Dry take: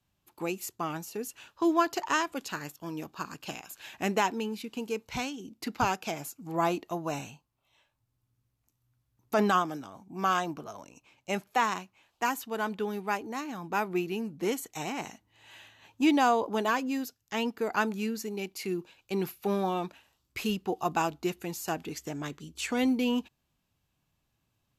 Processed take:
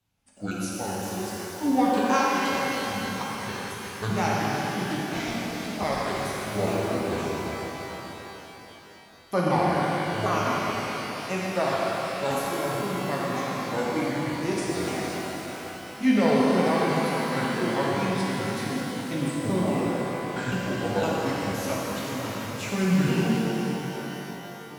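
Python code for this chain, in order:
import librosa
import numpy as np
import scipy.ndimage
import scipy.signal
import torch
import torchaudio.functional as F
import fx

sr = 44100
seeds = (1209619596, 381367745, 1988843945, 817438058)

y = fx.pitch_ramps(x, sr, semitones=-10.5, every_ms=513)
y = fx.rev_shimmer(y, sr, seeds[0], rt60_s=4.0, semitones=12, shimmer_db=-8, drr_db=-5.5)
y = y * librosa.db_to_amplitude(-1.0)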